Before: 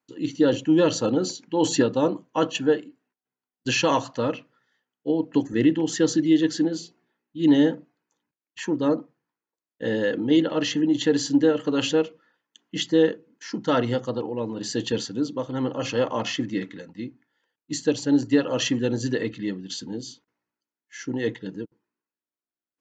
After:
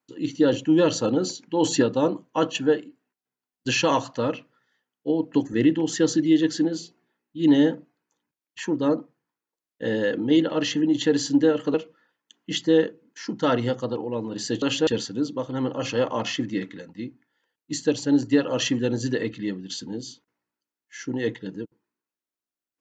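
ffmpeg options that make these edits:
ffmpeg -i in.wav -filter_complex "[0:a]asplit=4[link_01][link_02][link_03][link_04];[link_01]atrim=end=11.742[link_05];[link_02]atrim=start=11.988:end=14.872[link_06];[link_03]atrim=start=11.738:end=11.992[link_07];[link_04]atrim=start=14.868[link_08];[link_05][link_06]acrossfade=duration=0.004:curve1=hsin:curve2=hsin[link_09];[link_09][link_07]acrossfade=duration=0.004:curve1=hsin:curve2=hsin[link_10];[link_10][link_08]acrossfade=duration=0.004:curve1=hsin:curve2=hsin" out.wav

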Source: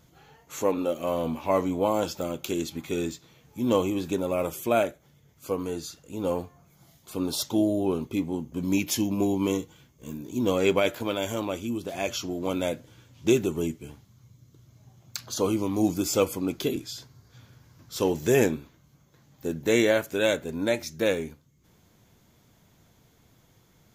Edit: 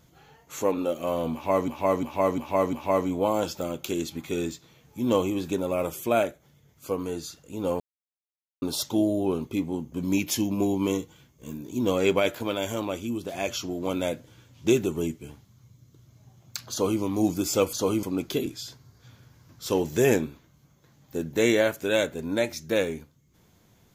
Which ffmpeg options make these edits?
ffmpeg -i in.wav -filter_complex "[0:a]asplit=9[link_01][link_02][link_03][link_04][link_05][link_06][link_07][link_08][link_09];[link_01]atrim=end=1.682[link_10];[link_02]atrim=start=1.328:end=1.682[link_11];[link_03]atrim=start=1.328:end=1.682[link_12];[link_04]atrim=start=1.328:end=1.682[link_13];[link_05]atrim=start=1.328:end=6.4,asetpts=PTS-STARTPTS,afade=type=out:start_time=5.068:duration=0.004:curve=hsin[link_14];[link_06]atrim=start=6.4:end=7.22,asetpts=PTS-STARTPTS,volume=0[link_15];[link_07]atrim=start=7.22:end=16.332,asetpts=PTS-STARTPTS,afade=type=in:duration=0.004:curve=hsin[link_16];[link_08]atrim=start=15.308:end=15.612[link_17];[link_09]atrim=start=16.328[link_18];[link_10][link_11]acrossfade=duration=0.004:curve1=hsin:curve2=hsin[link_19];[link_19][link_12]acrossfade=duration=0.004:curve1=hsin:curve2=hsin[link_20];[link_20][link_13]acrossfade=duration=0.004:curve1=hsin:curve2=hsin[link_21];[link_14][link_15][link_16]concat=n=3:v=0:a=1[link_22];[link_21][link_22]acrossfade=duration=0.004:curve1=hsin:curve2=hsin[link_23];[link_23][link_17]acrossfade=duration=0.004:curve1=hsin:curve2=hsin[link_24];[link_24][link_18]acrossfade=duration=0.004:curve1=hsin:curve2=hsin" out.wav

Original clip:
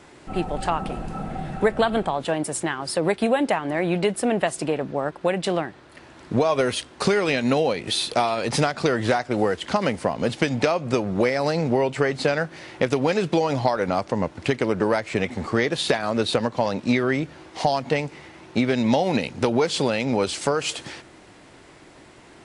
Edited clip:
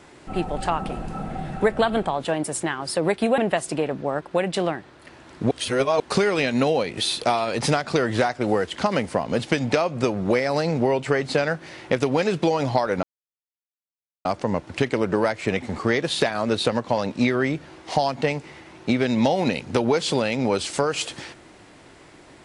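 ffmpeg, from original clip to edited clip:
ffmpeg -i in.wav -filter_complex "[0:a]asplit=5[link_01][link_02][link_03][link_04][link_05];[link_01]atrim=end=3.382[link_06];[link_02]atrim=start=4.278:end=6.412[link_07];[link_03]atrim=start=6.408:end=6.902,asetpts=PTS-STARTPTS,areverse[link_08];[link_04]atrim=start=6.898:end=13.93,asetpts=PTS-STARTPTS,afade=type=out:start_time=7.028:duration=0.004:curve=hsin,apad=pad_dur=1.22[link_09];[link_05]atrim=start=13.93,asetpts=PTS-STARTPTS,afade=type=in:duration=0.004:curve=hsin[link_10];[link_06][link_07]acrossfade=duration=0.004:curve1=hsin:curve2=hsin[link_11];[link_11][link_08]acrossfade=duration=0.004:curve1=hsin:curve2=hsin[link_12];[link_09][link_10]concat=n=2:v=0:a=1[link_13];[link_12][link_13]acrossfade=duration=0.004:curve1=hsin:curve2=hsin" out.wav

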